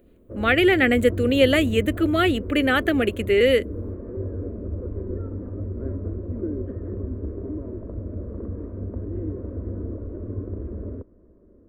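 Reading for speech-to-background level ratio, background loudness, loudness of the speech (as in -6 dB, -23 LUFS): 12.5 dB, -32.5 LUFS, -20.0 LUFS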